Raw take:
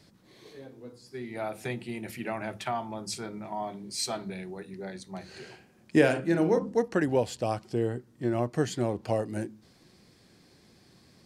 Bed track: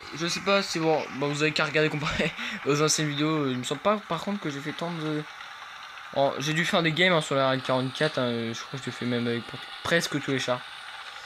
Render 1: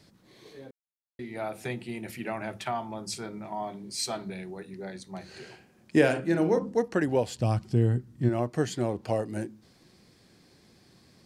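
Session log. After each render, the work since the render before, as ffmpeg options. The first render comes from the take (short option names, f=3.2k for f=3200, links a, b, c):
-filter_complex "[0:a]asplit=3[a][b][c];[a]afade=t=out:st=7.38:d=0.02[d];[b]asubboost=boost=4.5:cutoff=210,afade=t=in:st=7.38:d=0.02,afade=t=out:st=8.28:d=0.02[e];[c]afade=t=in:st=8.28:d=0.02[f];[d][e][f]amix=inputs=3:normalize=0,asplit=3[g][h][i];[g]atrim=end=0.71,asetpts=PTS-STARTPTS,afade=t=out:st=0.706:d=0.004:c=hsin[j];[h]atrim=start=0.71:end=1.19,asetpts=PTS-STARTPTS,volume=0[k];[i]atrim=start=1.19,asetpts=PTS-STARTPTS,afade=t=in:d=0.004:c=hsin[l];[j][k][l]concat=n=3:v=0:a=1"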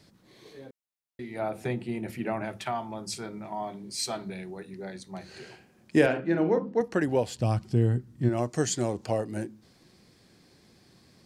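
-filter_complex "[0:a]asettb=1/sr,asplit=3[a][b][c];[a]atrim=end=1.394[d];[b]atrim=start=1.39:end=2.45,asetpts=PTS-STARTPTS,afade=t=in:d=0.004:c=qsin,afade=t=out:st=1.056:d=0.004:c=qsin,tiltshelf=f=1.5k:g=4.5[e];[c]atrim=start=2.446[f];[d][e]acrossfade=d=0.004:c1=hsin:c2=qsin[g];[g][f]acrossfade=d=0.004:c1=qsin:c2=hsin,asettb=1/sr,asplit=3[h][i][j];[h]atrim=end=6.064[k];[i]atrim=start=6.06:end=6.81,asetpts=PTS-STARTPTS,afade=t=in:d=0.004:c=qsin,afade=t=out:st=0.746:d=0.004:c=qsin,highpass=130,lowpass=3.2k[l];[j]atrim=start=6.806[m];[k][l]acrossfade=d=0.004:c1=hsin:c2=qsin[n];[n][m]acrossfade=d=0.004:c1=qsin:c2=hsin,asettb=1/sr,asplit=3[o][p][q];[o]atrim=end=8.374[r];[p]atrim=start=8.37:end=9.06,asetpts=PTS-STARTPTS,afade=t=in:d=0.004:c=qsin,afade=t=out:st=0.686:d=0.004:c=qsin,equalizer=f=6.9k:t=o:w=1.1:g=11.5[s];[q]atrim=start=9.056[t];[r][s]acrossfade=d=0.004:c1=hsin:c2=qsin[u];[u][t]acrossfade=d=0.004:c1=qsin:c2=hsin"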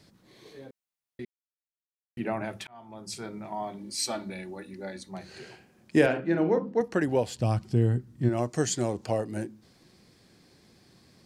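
-filter_complex "[0:a]asettb=1/sr,asplit=3[a][b][c];[a]atrim=end=3.784[d];[b]atrim=start=3.78:end=5.09,asetpts=PTS-STARTPTS,afade=t=in:d=0.004:c=qsin,afade=t=out:st=1.306:d=0.004:c=qsin,aecho=1:1:3.5:0.65,atrim=end_sample=57771[e];[c]atrim=start=5.086[f];[d][e]acrossfade=d=0.004:c1=hsin:c2=qsin[g];[g][f]acrossfade=d=0.004:c1=qsin:c2=hsin,asplit=4[h][i][j][k];[h]atrim=end=1.25,asetpts=PTS-STARTPTS,afade=t=out:st=1.246:d=0.004:c=hsin[l];[i]atrim=start=1.25:end=2.17,asetpts=PTS-STARTPTS,volume=0[m];[j]atrim=start=2.17:end=2.67,asetpts=PTS-STARTPTS,afade=t=in:d=0.004:c=hsin,afade=t=out:st=0.496:d=0.004:c=hsin[n];[k]atrim=start=2.67,asetpts=PTS-STARTPTS,afade=t=in:d=0.61[o];[l][m][n][o]concat=n=4:v=0:a=1"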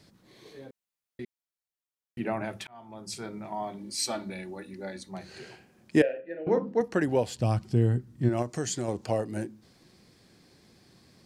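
-filter_complex "[0:a]asettb=1/sr,asplit=3[a][b][c];[a]atrim=end=6.024[d];[b]atrim=start=6.02:end=6.47,asetpts=PTS-STARTPTS,afade=t=in:d=0.004:c=qsin,afade=t=out:st=0.446:d=0.004:c=qsin,asplit=3[e][f][g];[e]bandpass=f=530:t=q:w=8,volume=0dB[h];[f]bandpass=f=1.84k:t=q:w=8,volume=-6dB[i];[g]bandpass=f=2.48k:t=q:w=8,volume=-9dB[j];[h][i][j]amix=inputs=3:normalize=0[k];[c]atrim=start=6.466[l];[d][k]acrossfade=d=0.004:c1=hsin:c2=qsin[m];[m][l]acrossfade=d=0.004:c1=qsin:c2=hsin,asettb=1/sr,asplit=3[n][o][p];[n]atrim=end=8.424[q];[o]atrim=start=8.42:end=8.88,asetpts=PTS-STARTPTS,afade=t=in:d=0.004:c=qsin,afade=t=out:st=0.456:d=0.004:c=qsin,acompressor=threshold=-29dB:ratio=2:attack=3.2:release=140:knee=1:detection=peak[r];[p]atrim=start=8.876[s];[q][r]acrossfade=d=0.004:c1=hsin:c2=qsin[t];[t][s]acrossfade=d=0.004:c1=qsin:c2=hsin"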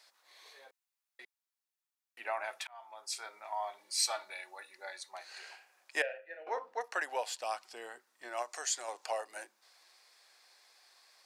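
-af "highpass=f=730:w=0.5412,highpass=f=730:w=1.3066,bandreject=f=3.1k:w=24"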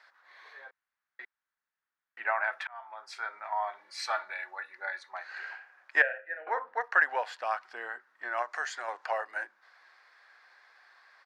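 -af "firequalizer=gain_entry='entry(380,0);entry(1600,14);entry(2500,0);entry(8300,-18)':delay=0.05:min_phase=1"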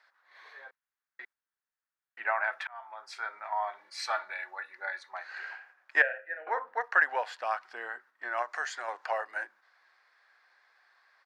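-af "agate=range=-6dB:threshold=-56dB:ratio=16:detection=peak"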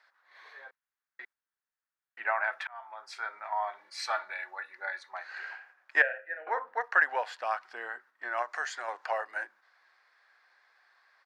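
-af anull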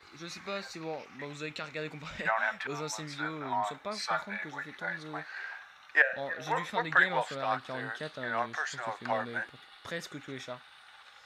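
-filter_complex "[1:a]volume=-14.5dB[a];[0:a][a]amix=inputs=2:normalize=0"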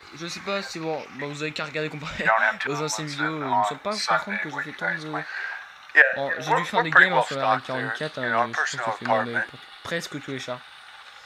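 -af "volume=9.5dB,alimiter=limit=-2dB:level=0:latency=1"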